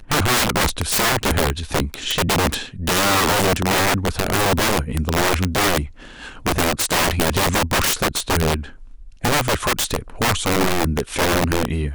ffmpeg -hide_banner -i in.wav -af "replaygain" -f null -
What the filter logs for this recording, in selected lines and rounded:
track_gain = +1.1 dB
track_peak = 0.166